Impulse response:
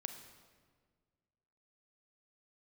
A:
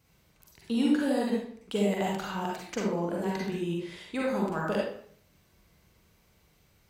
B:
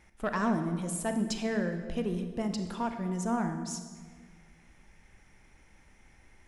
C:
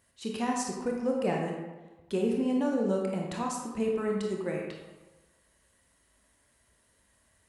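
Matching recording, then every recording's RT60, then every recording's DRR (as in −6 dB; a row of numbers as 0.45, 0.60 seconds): B; 0.60, 1.7, 1.2 seconds; −4.0, 6.5, −1.0 decibels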